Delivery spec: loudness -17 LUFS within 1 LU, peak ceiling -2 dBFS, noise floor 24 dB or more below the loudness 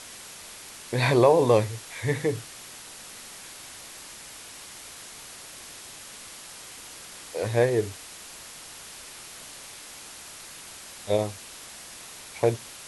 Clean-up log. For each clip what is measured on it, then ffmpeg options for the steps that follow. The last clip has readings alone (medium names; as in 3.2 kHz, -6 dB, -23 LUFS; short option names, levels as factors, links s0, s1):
noise floor -44 dBFS; noise floor target -49 dBFS; loudness -25.0 LUFS; peak level -7.0 dBFS; loudness target -17.0 LUFS
-> -af "afftdn=nr=6:nf=-44"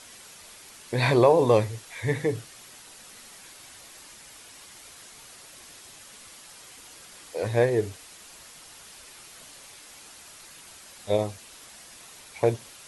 noise floor -48 dBFS; noise floor target -49 dBFS
-> -af "afftdn=nr=6:nf=-48"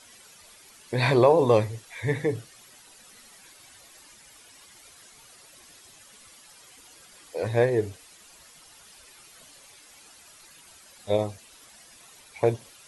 noise floor -53 dBFS; loudness -25.0 LUFS; peak level -7.0 dBFS; loudness target -17.0 LUFS
-> -af "volume=2.51,alimiter=limit=0.794:level=0:latency=1"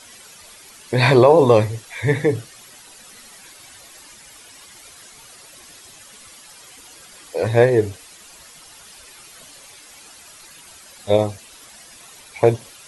loudness -17.5 LUFS; peak level -2.0 dBFS; noise floor -45 dBFS